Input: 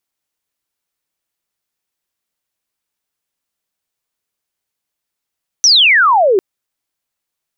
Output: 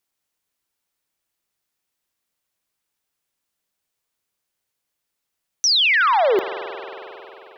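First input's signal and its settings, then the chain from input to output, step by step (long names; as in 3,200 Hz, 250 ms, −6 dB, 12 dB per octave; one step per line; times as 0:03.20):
glide logarithmic 6,100 Hz → 360 Hz −5 dBFS → −8 dBFS 0.75 s
brickwall limiter −13.5 dBFS
spring reverb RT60 3.6 s, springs 45 ms, chirp 65 ms, DRR 10 dB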